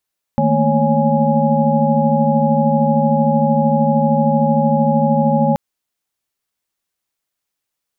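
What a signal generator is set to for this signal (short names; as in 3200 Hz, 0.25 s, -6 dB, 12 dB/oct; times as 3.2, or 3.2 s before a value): chord D#3/A3/A#3/C#5/G#5 sine, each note -18 dBFS 5.18 s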